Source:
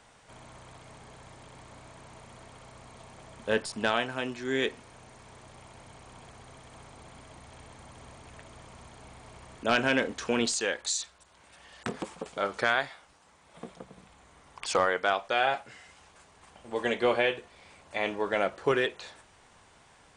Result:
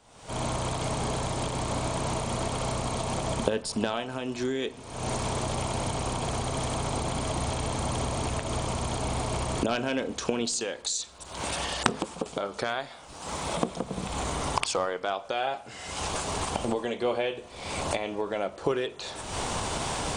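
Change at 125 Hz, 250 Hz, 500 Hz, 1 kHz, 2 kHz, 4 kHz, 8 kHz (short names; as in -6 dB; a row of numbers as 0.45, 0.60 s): +14.0, +4.5, +1.5, +3.0, -4.0, +3.0, +6.5 dB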